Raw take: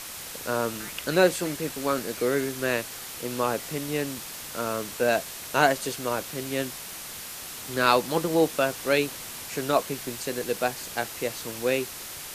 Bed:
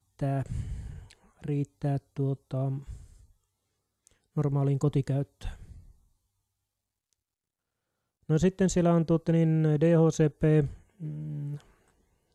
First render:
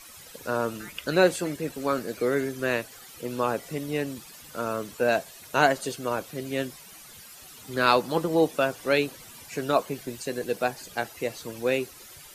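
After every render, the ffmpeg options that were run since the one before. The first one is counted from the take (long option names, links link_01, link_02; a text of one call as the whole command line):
ffmpeg -i in.wav -af "afftdn=noise_reduction=13:noise_floor=-39" out.wav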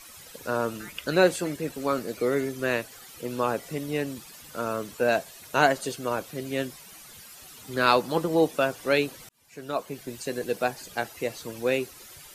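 ffmpeg -i in.wav -filter_complex "[0:a]asettb=1/sr,asplit=3[link_01][link_02][link_03];[link_01]atrim=end=1.844[link_04];[link_02]atrim=start=1.84:end=2.64,asetpts=PTS-STARTPTS,afade=type=in:duration=0.004:curve=qsin,afade=type=out:start_time=0.796:duration=0.004:curve=qsin,bandreject=frequency=1600:width=8.7[link_05];[link_03]atrim=start=2.636[link_06];[link_04][link_05]acrossfade=duration=0.004:curve1=hsin:curve2=qsin[link_07];[link_07][link_06]acrossfade=duration=0.004:curve1=qsin:curve2=hsin,asplit=2[link_08][link_09];[link_08]atrim=end=9.29,asetpts=PTS-STARTPTS,afade=type=out:start_time=9.286:duration=0.004:curve=hsin[link_10];[link_09]atrim=start=9.29,asetpts=PTS-STARTPTS,afade=type=in:duration=0.98[link_11];[link_10][link_11]concat=n=2:v=0:a=1" out.wav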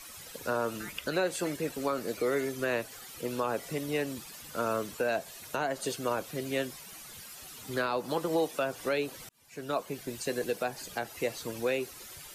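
ffmpeg -i in.wav -filter_complex "[0:a]acrossover=split=380|1000[link_01][link_02][link_03];[link_01]acompressor=threshold=-36dB:ratio=4[link_04];[link_02]acompressor=threshold=-26dB:ratio=4[link_05];[link_03]acompressor=threshold=-31dB:ratio=4[link_06];[link_04][link_05][link_06]amix=inputs=3:normalize=0,alimiter=limit=-19.5dB:level=0:latency=1:release=165" out.wav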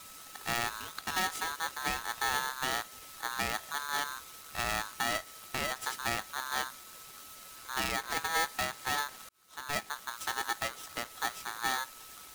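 ffmpeg -i in.wav -af "aeval=exprs='if(lt(val(0),0),0.251*val(0),val(0))':channel_layout=same,aeval=exprs='val(0)*sgn(sin(2*PI*1300*n/s))':channel_layout=same" out.wav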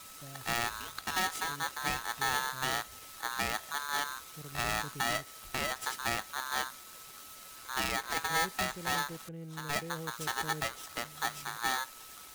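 ffmpeg -i in.wav -i bed.wav -filter_complex "[1:a]volume=-20.5dB[link_01];[0:a][link_01]amix=inputs=2:normalize=0" out.wav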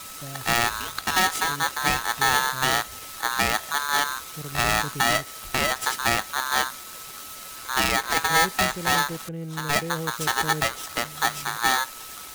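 ffmpeg -i in.wav -af "volume=10.5dB" out.wav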